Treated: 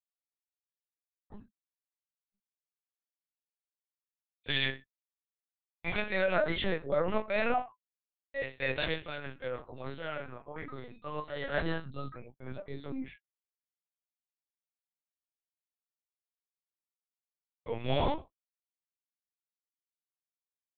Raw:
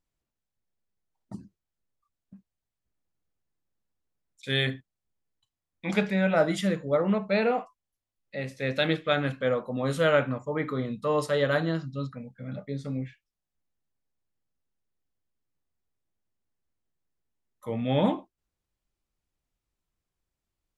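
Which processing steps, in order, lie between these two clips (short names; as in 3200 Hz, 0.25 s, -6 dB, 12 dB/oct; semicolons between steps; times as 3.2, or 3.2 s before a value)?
gate -43 dBFS, range -53 dB; low shelf 500 Hz -11 dB; limiter -21 dBFS, peak gain reduction 9 dB; 9.07–11.54 resonator 280 Hz, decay 0.18 s, harmonics odd, mix 70%; chorus 0.33 Hz, depth 6.3 ms; LPC vocoder at 8 kHz pitch kept; gain +5.5 dB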